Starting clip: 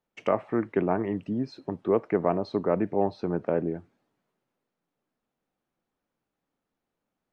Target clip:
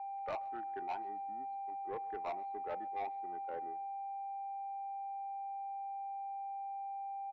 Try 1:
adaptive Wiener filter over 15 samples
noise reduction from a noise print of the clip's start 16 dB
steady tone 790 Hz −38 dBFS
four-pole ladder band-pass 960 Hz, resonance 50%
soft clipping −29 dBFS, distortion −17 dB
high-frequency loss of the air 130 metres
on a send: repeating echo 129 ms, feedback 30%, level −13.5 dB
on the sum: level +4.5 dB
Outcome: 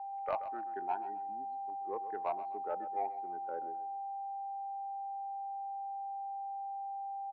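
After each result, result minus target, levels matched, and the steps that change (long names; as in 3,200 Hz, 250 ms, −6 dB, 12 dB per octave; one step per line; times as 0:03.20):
echo-to-direct +10.5 dB; soft clipping: distortion −8 dB
change: repeating echo 129 ms, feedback 30%, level −24 dB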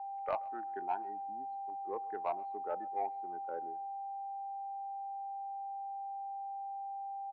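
soft clipping: distortion −8 dB
change: soft clipping −38.5 dBFS, distortion −9 dB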